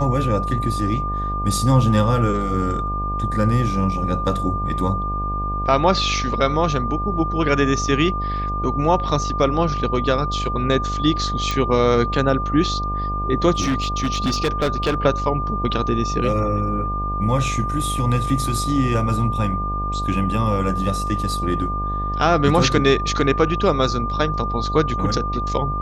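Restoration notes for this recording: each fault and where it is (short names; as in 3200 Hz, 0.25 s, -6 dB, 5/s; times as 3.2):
buzz 50 Hz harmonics 17 -26 dBFS
tone 1200 Hz -24 dBFS
11.51 pop -9 dBFS
13.61–14.95 clipped -15.5 dBFS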